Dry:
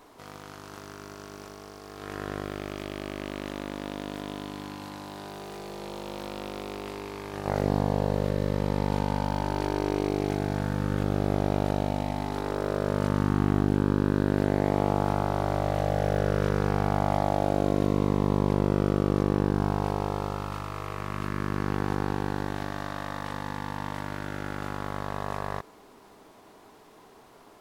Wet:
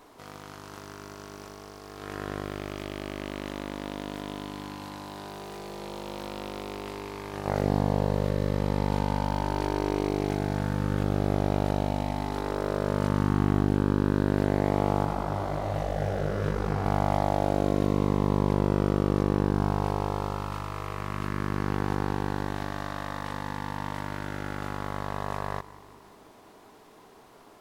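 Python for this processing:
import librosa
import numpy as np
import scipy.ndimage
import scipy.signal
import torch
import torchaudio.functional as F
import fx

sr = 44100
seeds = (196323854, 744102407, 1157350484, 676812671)

y = fx.echo_feedback(x, sr, ms=181, feedback_pct=60, wet_db=-20)
y = fx.detune_double(y, sr, cents=49, at=(15.04, 16.84), fade=0.02)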